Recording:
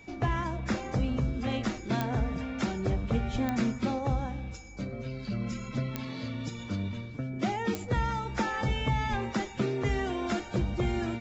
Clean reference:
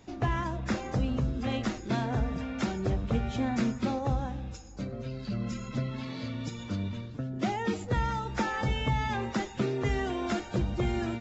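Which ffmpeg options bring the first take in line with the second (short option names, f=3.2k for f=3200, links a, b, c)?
-filter_complex "[0:a]adeclick=t=4,bandreject=f=2.3k:w=30,asplit=3[a][b][c];[a]afade=t=out:st=3.32:d=0.02[d];[b]highpass=f=140:w=0.5412,highpass=f=140:w=1.3066,afade=t=in:st=3.32:d=0.02,afade=t=out:st=3.44:d=0.02[e];[c]afade=t=in:st=3.44:d=0.02[f];[d][e][f]amix=inputs=3:normalize=0,asplit=3[g][h][i];[g]afade=t=out:st=9.1:d=0.02[j];[h]highpass=f=140:w=0.5412,highpass=f=140:w=1.3066,afade=t=in:st=9.1:d=0.02,afade=t=out:st=9.22:d=0.02[k];[i]afade=t=in:st=9.22:d=0.02[l];[j][k][l]amix=inputs=3:normalize=0"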